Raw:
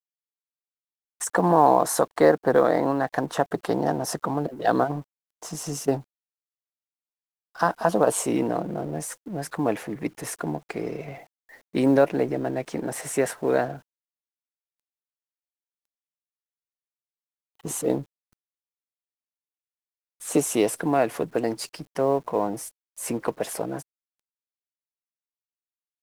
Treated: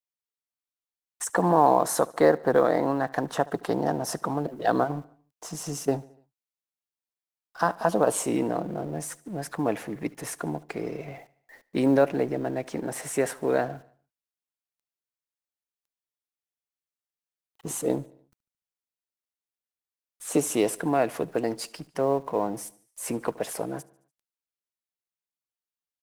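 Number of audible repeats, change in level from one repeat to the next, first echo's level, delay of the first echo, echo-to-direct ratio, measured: 3, -5.5 dB, -22.5 dB, 73 ms, -21.0 dB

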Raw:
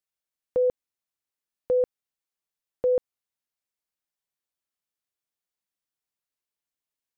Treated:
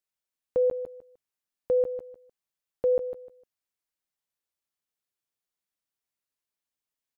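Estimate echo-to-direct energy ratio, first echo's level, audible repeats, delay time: -10.5 dB, -11.0 dB, 2, 152 ms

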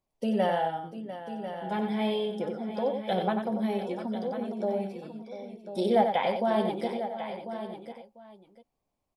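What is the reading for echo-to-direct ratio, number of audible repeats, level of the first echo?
-4.0 dB, 7, -18.0 dB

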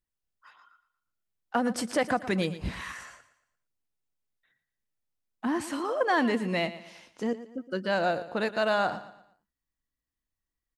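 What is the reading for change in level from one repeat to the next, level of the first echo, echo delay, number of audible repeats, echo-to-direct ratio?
-8.5 dB, -14.5 dB, 116 ms, 3, -14.0 dB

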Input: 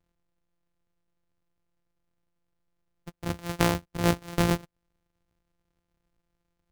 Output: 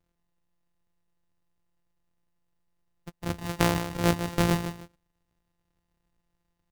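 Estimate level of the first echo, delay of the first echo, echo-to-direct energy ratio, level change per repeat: -9.0 dB, 152 ms, -8.5 dB, -12.0 dB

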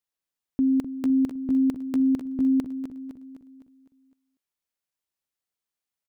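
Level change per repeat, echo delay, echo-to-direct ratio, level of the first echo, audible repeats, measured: -6.0 dB, 255 ms, -8.0 dB, -9.0 dB, 5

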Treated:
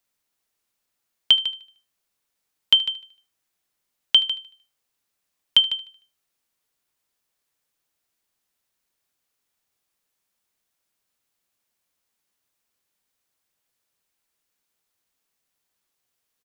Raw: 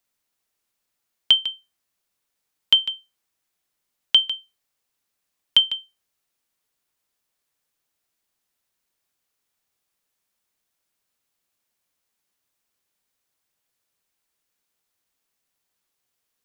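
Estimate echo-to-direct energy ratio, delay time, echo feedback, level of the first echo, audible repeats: -18.0 dB, 76 ms, 46%, -19.0 dB, 3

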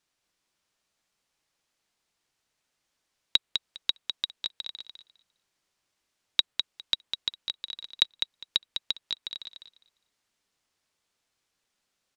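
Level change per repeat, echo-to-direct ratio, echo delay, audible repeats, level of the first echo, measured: -16.0 dB, -6.5 dB, 203 ms, 2, -6.5 dB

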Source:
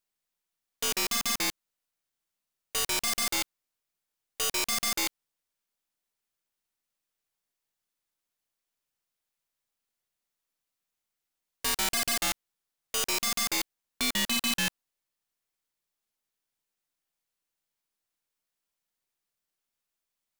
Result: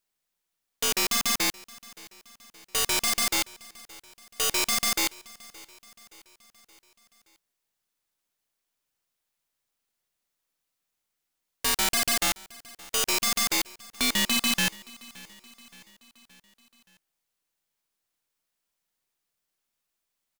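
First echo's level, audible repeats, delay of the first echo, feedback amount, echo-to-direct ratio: -22.0 dB, 3, 572 ms, 56%, -20.5 dB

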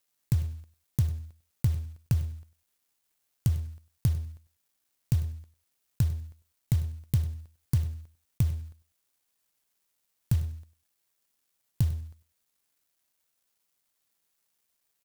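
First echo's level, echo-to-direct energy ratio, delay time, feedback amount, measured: -17.5 dB, -17.5 dB, 99 ms, 17%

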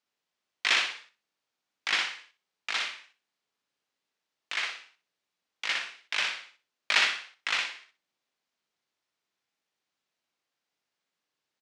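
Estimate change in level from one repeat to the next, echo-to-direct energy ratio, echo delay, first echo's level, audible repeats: -13.0 dB, -4.0 dB, 61 ms, -4.0 dB, 3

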